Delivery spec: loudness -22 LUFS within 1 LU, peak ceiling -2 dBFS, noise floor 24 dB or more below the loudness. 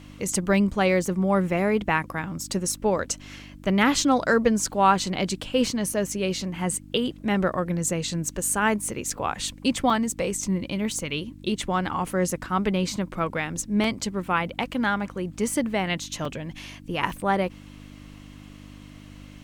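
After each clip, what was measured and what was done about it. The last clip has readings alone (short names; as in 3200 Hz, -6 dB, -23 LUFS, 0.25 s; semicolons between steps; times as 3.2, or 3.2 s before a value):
dropouts 7; longest dropout 3.2 ms; hum 50 Hz; harmonics up to 300 Hz; hum level -44 dBFS; loudness -25.5 LUFS; peak -6.5 dBFS; loudness target -22.0 LUFS
-> interpolate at 5.94/9.1/9.9/12.31/13.84/16.25/17.1, 3.2 ms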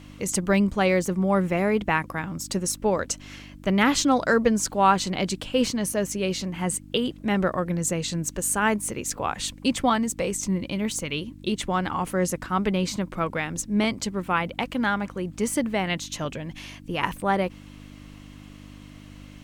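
dropouts 0; hum 50 Hz; harmonics up to 300 Hz; hum level -44 dBFS
-> de-hum 50 Hz, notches 6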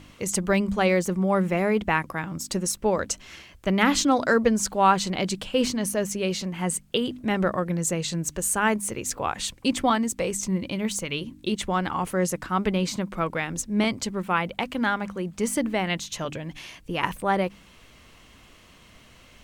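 hum none; loudness -25.5 LUFS; peak -6.5 dBFS; loudness target -22.0 LUFS
-> gain +3.5 dB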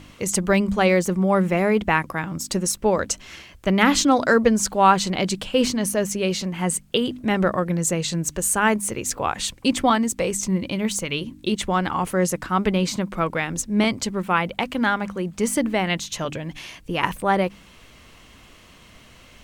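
loudness -22.0 LUFS; peak -3.0 dBFS; noise floor -49 dBFS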